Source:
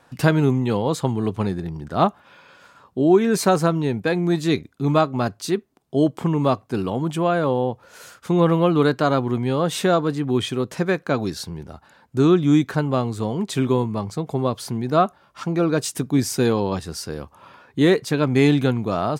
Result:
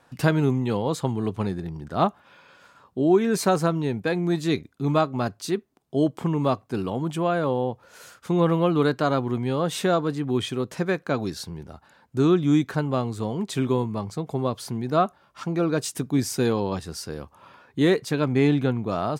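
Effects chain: 18.32–18.89 s: treble shelf 3.9 kHz -9.5 dB; trim -3.5 dB

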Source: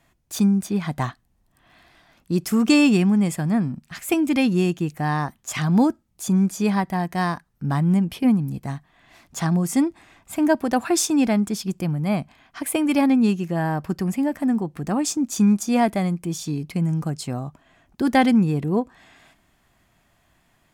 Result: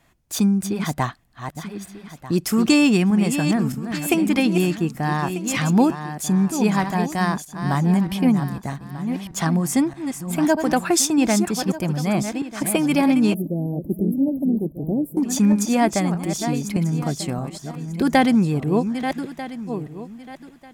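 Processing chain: backward echo that repeats 621 ms, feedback 44%, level -8.5 dB; harmonic-percussive split percussive +4 dB; 13.34–15.17 s: inverse Chebyshev band-stop 1.2–7 kHz, stop band 50 dB

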